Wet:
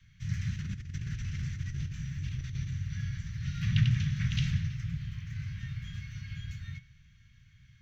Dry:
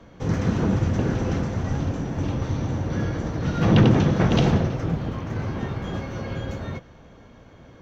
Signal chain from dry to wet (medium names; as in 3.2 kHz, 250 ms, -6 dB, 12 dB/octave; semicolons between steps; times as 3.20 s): elliptic band-stop 140–1900 Hz, stop band 80 dB; 0.56–2.73 s: compressor with a negative ratio -28 dBFS, ratio -0.5; flange 0.26 Hz, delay 9 ms, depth 5.5 ms, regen -85%; trim -2 dB